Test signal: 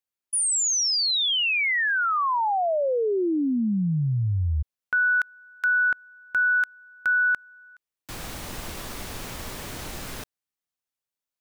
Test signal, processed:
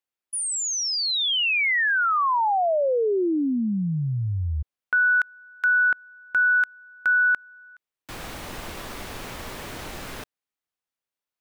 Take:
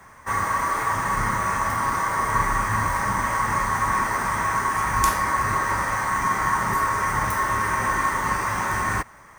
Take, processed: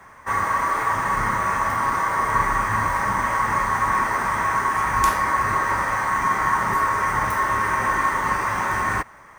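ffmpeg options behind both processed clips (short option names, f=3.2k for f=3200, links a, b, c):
-af "bass=f=250:g=-4,treble=f=4k:g=-6,volume=2dB"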